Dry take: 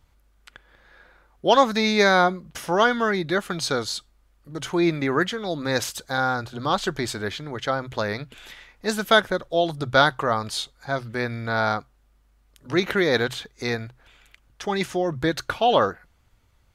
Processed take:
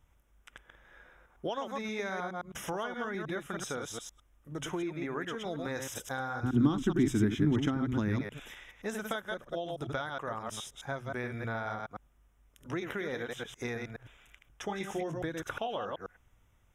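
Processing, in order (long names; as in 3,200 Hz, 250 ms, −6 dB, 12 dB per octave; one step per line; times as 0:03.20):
delay that plays each chunk backwards 105 ms, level −5 dB
downward compressor 10 to 1, threshold −27 dBFS, peak gain reduction 17 dB
Butterworth band-reject 4,400 Hz, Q 2.5
0:06.43–0:08.21: low shelf with overshoot 400 Hz +10.5 dB, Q 3
0:14.67–0:15.18: double-tracking delay 19 ms −6.5 dB
level −5.5 dB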